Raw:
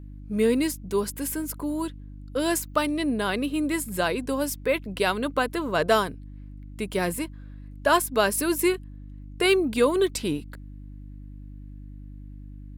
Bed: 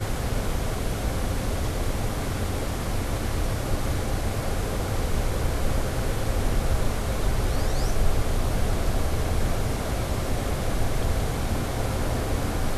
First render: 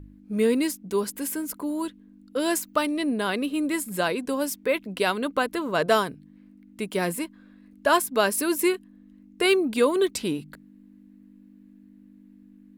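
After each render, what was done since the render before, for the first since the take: de-hum 50 Hz, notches 3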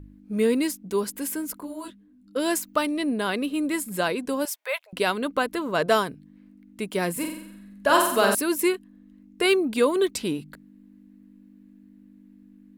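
1.60–2.36 s: detune thickener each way 24 cents; 4.45–4.93 s: steep high-pass 590 Hz 48 dB/octave; 7.12–8.35 s: flutter echo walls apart 7.7 m, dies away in 0.72 s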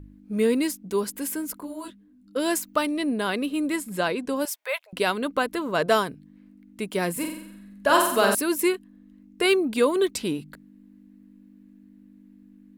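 3.76–4.36 s: treble shelf 10 kHz -9.5 dB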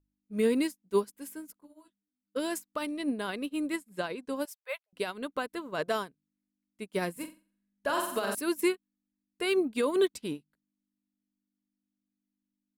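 peak limiter -16 dBFS, peak gain reduction 8.5 dB; upward expansion 2.5:1, over -44 dBFS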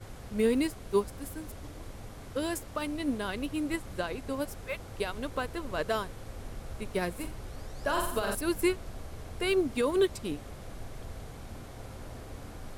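add bed -17.5 dB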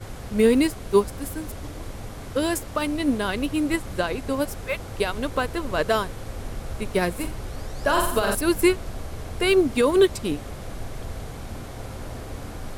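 trim +8.5 dB

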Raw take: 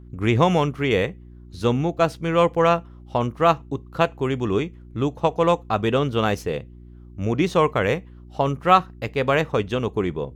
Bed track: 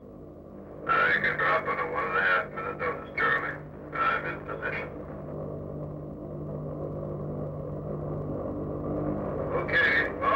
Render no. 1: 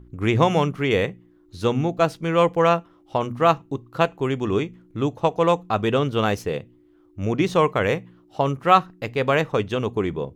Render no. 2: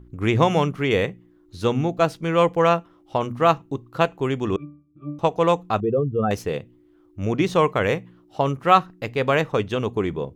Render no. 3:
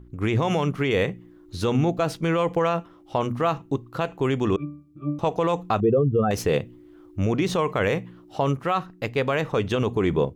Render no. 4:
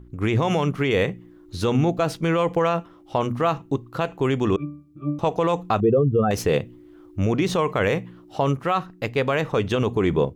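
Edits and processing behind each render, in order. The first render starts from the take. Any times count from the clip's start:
de-hum 60 Hz, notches 4
4.56–5.19 s: pitch-class resonator D, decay 0.46 s; 5.80–6.31 s: spectral contrast enhancement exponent 2.6
level rider gain up to 9 dB; peak limiter -12.5 dBFS, peak gain reduction 11.5 dB
trim +1.5 dB

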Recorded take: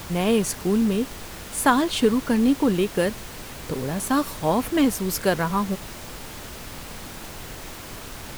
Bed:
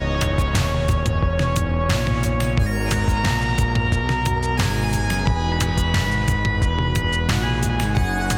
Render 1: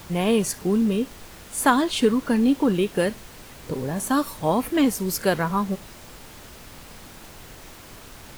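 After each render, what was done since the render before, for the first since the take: noise print and reduce 6 dB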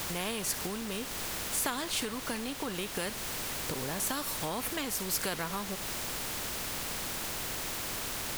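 compression 3:1, threshold -29 dBFS, peak gain reduction 13 dB; spectrum-flattening compressor 2:1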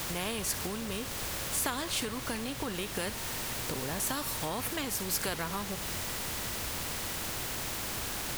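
add bed -27 dB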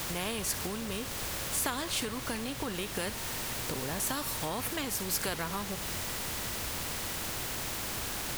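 no audible change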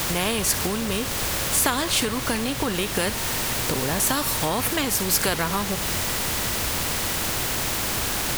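trim +10.5 dB

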